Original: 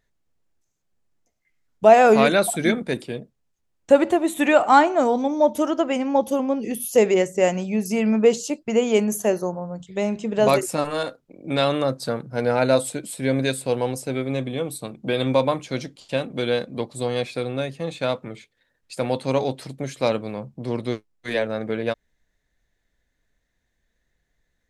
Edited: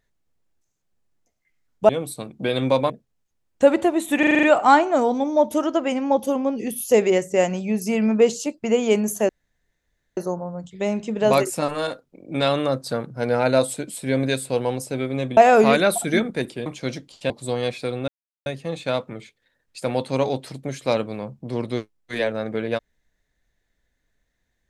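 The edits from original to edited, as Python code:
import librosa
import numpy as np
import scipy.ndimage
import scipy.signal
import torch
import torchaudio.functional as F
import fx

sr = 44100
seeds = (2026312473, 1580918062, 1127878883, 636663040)

y = fx.edit(x, sr, fx.swap(start_s=1.89, length_s=1.29, other_s=14.53, other_length_s=1.01),
    fx.stutter(start_s=4.47, slice_s=0.04, count=7),
    fx.insert_room_tone(at_s=9.33, length_s=0.88),
    fx.cut(start_s=16.18, length_s=0.65),
    fx.insert_silence(at_s=17.61, length_s=0.38), tone=tone)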